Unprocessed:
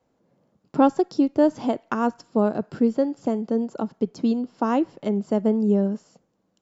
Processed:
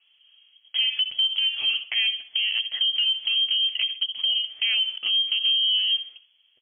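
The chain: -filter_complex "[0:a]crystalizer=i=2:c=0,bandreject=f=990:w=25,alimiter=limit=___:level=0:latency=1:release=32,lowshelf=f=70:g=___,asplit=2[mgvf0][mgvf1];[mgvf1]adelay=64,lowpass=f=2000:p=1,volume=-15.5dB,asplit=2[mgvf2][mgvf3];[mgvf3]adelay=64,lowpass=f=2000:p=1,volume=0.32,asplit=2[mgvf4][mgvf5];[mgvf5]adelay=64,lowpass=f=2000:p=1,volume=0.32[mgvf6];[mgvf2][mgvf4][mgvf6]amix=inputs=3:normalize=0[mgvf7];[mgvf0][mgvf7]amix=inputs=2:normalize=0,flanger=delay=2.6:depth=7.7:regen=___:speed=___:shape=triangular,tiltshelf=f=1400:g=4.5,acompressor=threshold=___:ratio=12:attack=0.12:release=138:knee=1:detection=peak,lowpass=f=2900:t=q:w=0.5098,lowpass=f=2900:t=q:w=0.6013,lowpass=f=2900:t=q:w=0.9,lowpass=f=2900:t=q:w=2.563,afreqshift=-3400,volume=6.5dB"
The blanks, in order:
-12.5dB, 5.5, -19, 0.4, -24dB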